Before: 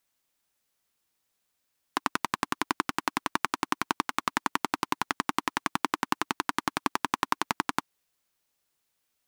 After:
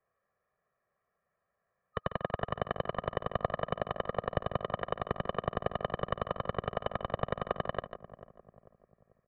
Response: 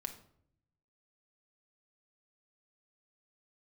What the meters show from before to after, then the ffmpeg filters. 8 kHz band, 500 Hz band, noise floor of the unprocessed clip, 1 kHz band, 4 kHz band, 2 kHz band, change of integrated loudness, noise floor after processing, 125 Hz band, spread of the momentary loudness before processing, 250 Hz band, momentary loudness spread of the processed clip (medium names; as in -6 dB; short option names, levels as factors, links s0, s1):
under -40 dB, +7.5 dB, -78 dBFS, -7.0 dB, -11.0 dB, -10.5 dB, -5.0 dB, -84 dBFS, +8.0 dB, 2 LU, -7.0 dB, 4 LU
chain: -filter_complex "[0:a]afftfilt=real='real(if(lt(b,272),68*(eq(floor(b/68),0)*1+eq(floor(b/68),1)*3+eq(floor(b/68),2)*0+eq(floor(b/68),3)*2)+mod(b,68),b),0)':imag='imag(if(lt(b,272),68*(eq(floor(b/68),0)*1+eq(floor(b/68),1)*3+eq(floor(b/68),2)*0+eq(floor(b/68),3)*2)+mod(b,68),b),0)':win_size=2048:overlap=0.75,aemphasis=mode=reproduction:type=75fm,asplit=2[s0][s1];[s1]aecho=0:1:145:0.299[s2];[s0][s2]amix=inputs=2:normalize=0,highpass=f=340:t=q:w=0.5412,highpass=f=340:t=q:w=1.307,lowpass=f=2100:t=q:w=0.5176,lowpass=f=2100:t=q:w=0.7071,lowpass=f=2100:t=q:w=1.932,afreqshift=-210,aecho=1:1:1.7:0.98,asplit=2[s3][s4];[s4]adelay=443,lowpass=f=810:p=1,volume=0.2,asplit=2[s5][s6];[s6]adelay=443,lowpass=f=810:p=1,volume=0.48,asplit=2[s7][s8];[s8]adelay=443,lowpass=f=810:p=1,volume=0.48,asplit=2[s9][s10];[s10]adelay=443,lowpass=f=810:p=1,volume=0.48,asplit=2[s11][s12];[s12]adelay=443,lowpass=f=810:p=1,volume=0.48[s13];[s5][s7][s9][s11][s13]amix=inputs=5:normalize=0[s14];[s3][s14]amix=inputs=2:normalize=0,volume=1.5"